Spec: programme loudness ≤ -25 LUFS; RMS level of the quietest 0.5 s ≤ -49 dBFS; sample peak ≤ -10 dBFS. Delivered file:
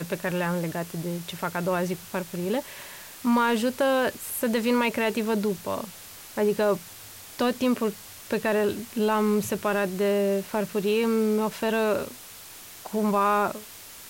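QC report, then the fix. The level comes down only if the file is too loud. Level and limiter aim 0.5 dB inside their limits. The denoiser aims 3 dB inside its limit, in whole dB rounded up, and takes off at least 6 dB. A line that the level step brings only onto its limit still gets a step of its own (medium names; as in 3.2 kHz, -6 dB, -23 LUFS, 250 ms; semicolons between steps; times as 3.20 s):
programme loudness -26.0 LUFS: pass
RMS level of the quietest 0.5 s -44 dBFS: fail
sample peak -12.0 dBFS: pass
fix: noise reduction 8 dB, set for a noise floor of -44 dBFS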